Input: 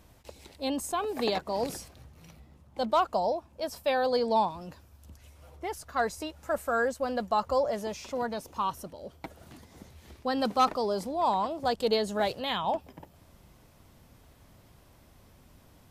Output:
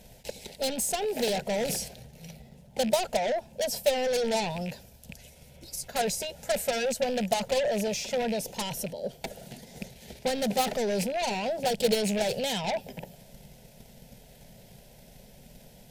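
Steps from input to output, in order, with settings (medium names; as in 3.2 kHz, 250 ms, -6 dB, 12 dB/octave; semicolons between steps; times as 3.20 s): rattle on loud lows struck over -42 dBFS, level -34 dBFS; spectral replace 5.41–5.85 s, 340–3700 Hz before; transient shaper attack +9 dB, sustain +5 dB; in parallel at -12 dB: sine folder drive 16 dB, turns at -12.5 dBFS; on the sum: static phaser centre 310 Hz, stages 6; trim -3.5 dB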